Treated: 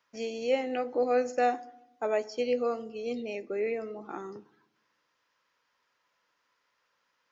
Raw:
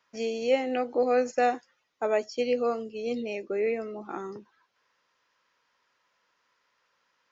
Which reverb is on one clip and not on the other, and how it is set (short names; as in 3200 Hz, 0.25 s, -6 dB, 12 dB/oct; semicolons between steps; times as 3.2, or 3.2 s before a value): FDN reverb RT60 0.87 s, low-frequency decay 1.35×, high-frequency decay 0.4×, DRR 15.5 dB; gain -3 dB